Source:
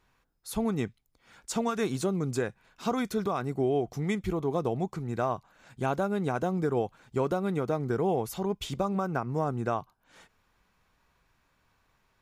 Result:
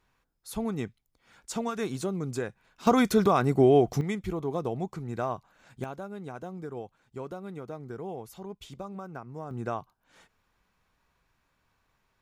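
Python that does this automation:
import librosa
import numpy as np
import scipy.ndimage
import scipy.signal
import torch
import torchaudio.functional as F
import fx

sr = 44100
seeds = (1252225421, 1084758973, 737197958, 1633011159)

y = fx.gain(x, sr, db=fx.steps((0.0, -2.5), (2.87, 7.5), (4.01, -2.0), (5.84, -10.5), (9.51, -3.0)))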